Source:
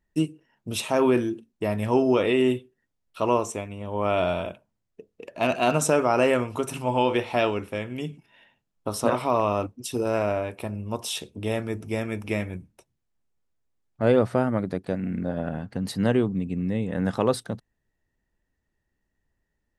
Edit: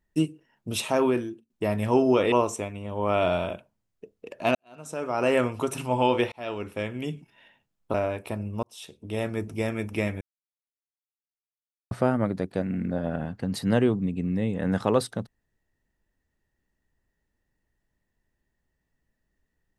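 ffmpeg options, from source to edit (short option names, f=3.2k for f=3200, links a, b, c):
-filter_complex "[0:a]asplit=9[a][b][c][d][e][f][g][h][i];[a]atrim=end=1.5,asetpts=PTS-STARTPTS,afade=t=out:st=0.88:d=0.62:silence=0.133352[j];[b]atrim=start=1.5:end=2.322,asetpts=PTS-STARTPTS,afade=t=in:d=0.004:c=hsin:silence=0.133352[k];[c]atrim=start=3.278:end=5.51,asetpts=PTS-STARTPTS,afade=t=out:st=2.228:d=0.004:c=hsin[l];[d]atrim=start=5.51:end=7.28,asetpts=PTS-STARTPTS,afade=t=in:d=0.84:c=qua,afade=t=out:st=1.766:d=0.004:c=hsin[m];[e]atrim=start=7.28:end=8.902,asetpts=PTS-STARTPTS,afade=t=in:d=0.5[n];[f]atrim=start=10.268:end=10.96,asetpts=PTS-STARTPTS,afade=t=out:st=0.688:d=0.004:c=hsin[o];[g]atrim=start=10.96:end=12.54,asetpts=PTS-STARTPTS,afade=t=in:d=0.72,afade=t=out:st=1.576:d=0.004:c=hsin[p];[h]atrim=start=12.54:end=14.24,asetpts=PTS-STARTPTS,volume=0[q];[i]atrim=start=14.24,asetpts=PTS-STARTPTS,afade=t=in:d=0.004:c=hsin[r];[j][k]concat=n=2:v=0:a=1[s];[l][m][n]concat=n=3:v=0:a=1[t];[s][t]acrossfade=d=0.004:c1=hsin:c2=hsin[u];[o][p][q][r]concat=n=4:v=0:a=1[v];[u][v]acrossfade=d=0.004:c1=hsin:c2=hsin"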